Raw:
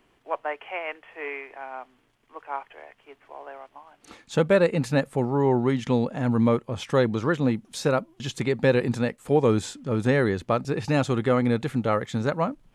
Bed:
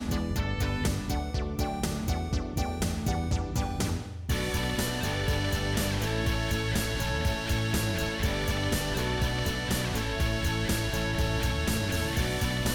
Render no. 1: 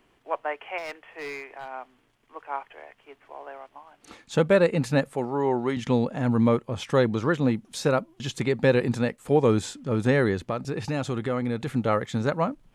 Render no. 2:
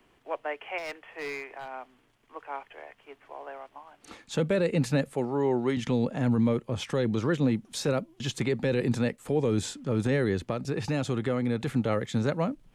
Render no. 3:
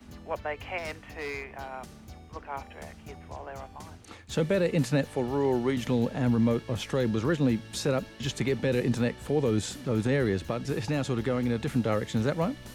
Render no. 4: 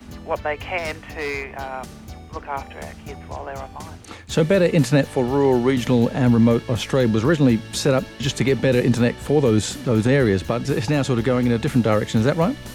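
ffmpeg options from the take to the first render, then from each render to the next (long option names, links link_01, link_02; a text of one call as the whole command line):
ffmpeg -i in.wav -filter_complex "[0:a]asettb=1/sr,asplit=3[link_01][link_02][link_03];[link_01]atrim=end=0.784[link_04];[link_02]atrim=start=0.78:end=1.68,asetpts=PTS-STARTPTS,afade=type=in:duration=0.004:curve=qsin,afade=type=out:start_time=0.896:duration=0.004:curve=qsin,asoftclip=type=hard:threshold=-31dB[link_05];[link_03]atrim=start=1.676[link_06];[link_04][link_05]acrossfade=duration=0.004:curve1=hsin:curve2=qsin[link_07];[link_07][link_06]acrossfade=duration=0.004:curve1=qsin:curve2=hsin,asettb=1/sr,asplit=3[link_08][link_09][link_10];[link_08]atrim=end=5.134[link_11];[link_09]atrim=start=5.13:end=5.77,asetpts=PTS-STARTPTS,afade=type=in:duration=0.004:curve=qsin,afade=type=out:start_time=0.636:duration=0.004:curve=qsin,highpass=frequency=360:poles=1[link_12];[link_10]atrim=start=5.766[link_13];[link_11][link_12]acrossfade=duration=0.004:curve1=hsin:curve2=qsin[link_14];[link_14][link_13]acrossfade=duration=0.004:curve1=qsin:curve2=hsin,asettb=1/sr,asplit=3[link_15][link_16][link_17];[link_15]atrim=end=10.454[link_18];[link_16]atrim=start=10.45:end=11.67,asetpts=PTS-STARTPTS,afade=type=in:duration=0.004:curve=qsin,afade=type=out:start_time=1.216:duration=0.004:curve=qsin,acompressor=threshold=-27dB:ratio=2:attack=3.2:release=140:knee=1:detection=peak[link_19];[link_17]atrim=start=11.666[link_20];[link_18][link_19]acrossfade=duration=0.004:curve1=hsin:curve2=qsin[link_21];[link_21][link_20]acrossfade=duration=0.004:curve1=qsin:curve2=hsin" out.wav
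ffmpeg -i in.wav -filter_complex "[0:a]acrossover=split=170|660|1600[link_01][link_02][link_03][link_04];[link_03]acompressor=threshold=-42dB:ratio=6[link_05];[link_01][link_02][link_05][link_04]amix=inputs=4:normalize=0,alimiter=limit=-17dB:level=0:latency=1:release=12" out.wav
ffmpeg -i in.wav -i bed.wav -filter_complex "[1:a]volume=-17dB[link_01];[0:a][link_01]amix=inputs=2:normalize=0" out.wav
ffmpeg -i in.wav -af "volume=9dB" out.wav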